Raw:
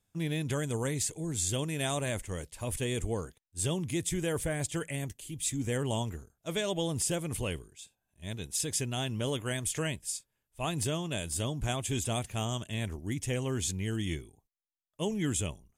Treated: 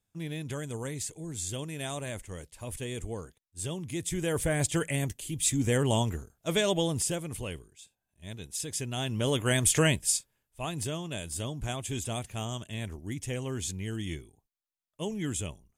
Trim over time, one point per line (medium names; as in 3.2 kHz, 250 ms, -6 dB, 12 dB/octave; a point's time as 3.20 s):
3.82 s -4 dB
4.59 s +5.5 dB
6.69 s +5.5 dB
7.34 s -3 dB
8.72 s -3 dB
9.63 s +9 dB
10.15 s +9 dB
10.67 s -2 dB